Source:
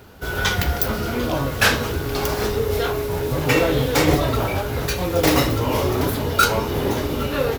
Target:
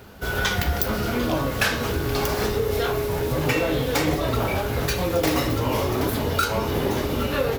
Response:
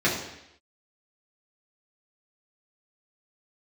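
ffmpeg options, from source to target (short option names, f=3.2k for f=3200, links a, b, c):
-filter_complex "[0:a]acompressor=threshold=-19dB:ratio=6,asplit=2[a][b];[1:a]atrim=start_sample=2205[c];[b][c]afir=irnorm=-1:irlink=0,volume=-26.5dB[d];[a][d]amix=inputs=2:normalize=0"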